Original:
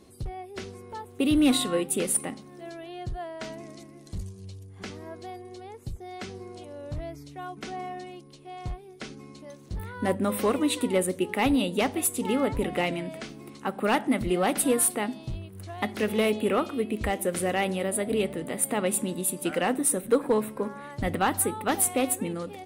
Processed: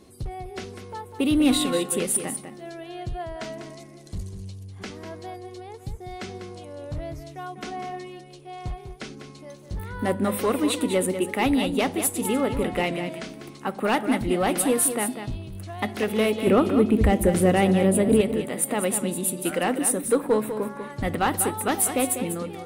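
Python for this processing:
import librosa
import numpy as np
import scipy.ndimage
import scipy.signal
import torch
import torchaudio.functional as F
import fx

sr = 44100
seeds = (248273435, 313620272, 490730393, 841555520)

p1 = fx.low_shelf(x, sr, hz=450.0, db=12.0, at=(16.47, 18.21))
p2 = 10.0 ** (-23.5 / 20.0) * np.tanh(p1 / 10.0 ** (-23.5 / 20.0))
p3 = p1 + F.gain(torch.from_numpy(p2), -10.5).numpy()
y = p3 + 10.0 ** (-9.0 / 20.0) * np.pad(p3, (int(197 * sr / 1000.0), 0))[:len(p3)]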